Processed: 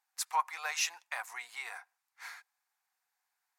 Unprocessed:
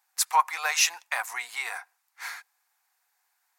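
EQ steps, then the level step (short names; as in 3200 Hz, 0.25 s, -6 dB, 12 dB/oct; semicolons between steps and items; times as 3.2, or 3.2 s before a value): high shelf 10000 Hz -5.5 dB; -9.0 dB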